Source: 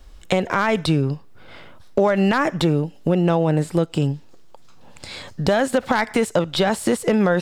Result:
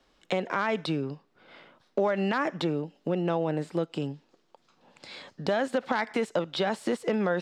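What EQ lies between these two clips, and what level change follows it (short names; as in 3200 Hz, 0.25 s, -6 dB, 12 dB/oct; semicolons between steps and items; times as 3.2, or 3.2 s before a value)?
three-band isolator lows -23 dB, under 160 Hz, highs -14 dB, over 6100 Hz; -8.0 dB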